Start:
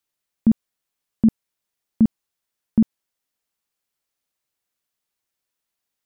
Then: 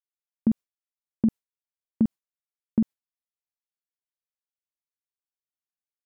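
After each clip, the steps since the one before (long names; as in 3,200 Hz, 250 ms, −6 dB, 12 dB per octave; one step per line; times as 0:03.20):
noise gate with hold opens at −17 dBFS
downward compressor, threshold −15 dBFS, peak gain reduction 4.5 dB
level −2.5 dB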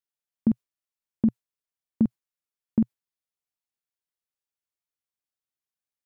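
parametric band 120 Hz +3.5 dB 0.51 octaves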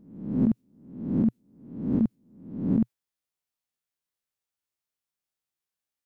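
peak hold with a rise ahead of every peak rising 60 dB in 0.72 s
brickwall limiter −14.5 dBFS, peak gain reduction 5 dB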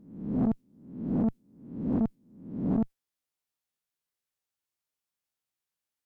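tube saturation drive 22 dB, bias 0.4
level +1 dB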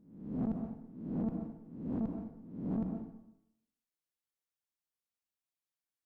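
tuned comb filter 160 Hz, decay 0.79 s, harmonics all, mix 50%
dense smooth reverb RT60 0.81 s, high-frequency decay 0.75×, pre-delay 115 ms, DRR 4.5 dB
level −3 dB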